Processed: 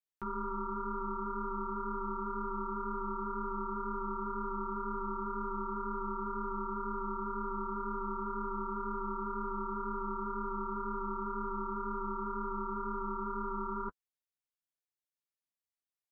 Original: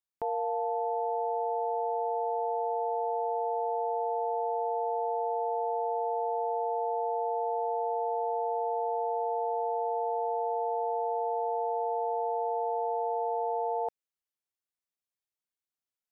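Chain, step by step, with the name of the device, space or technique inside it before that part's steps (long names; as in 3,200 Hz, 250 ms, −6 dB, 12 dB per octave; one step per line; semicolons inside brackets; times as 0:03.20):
alien voice (ring modulation 490 Hz; flanger 2 Hz, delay 6.9 ms, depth 7.3 ms, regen −17%)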